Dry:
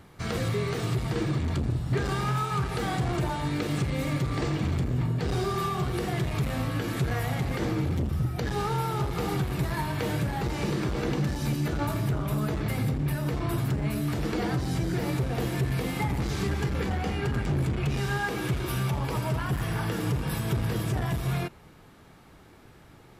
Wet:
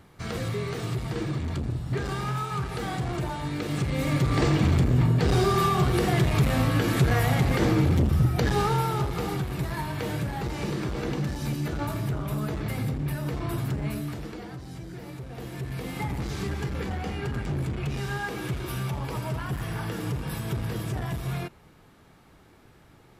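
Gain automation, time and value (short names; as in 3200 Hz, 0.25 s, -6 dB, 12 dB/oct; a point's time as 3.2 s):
3.57 s -2 dB
4.41 s +6 dB
8.45 s +6 dB
9.39 s -1.5 dB
13.92 s -1.5 dB
14.45 s -11.5 dB
15.2 s -11.5 dB
16.04 s -2.5 dB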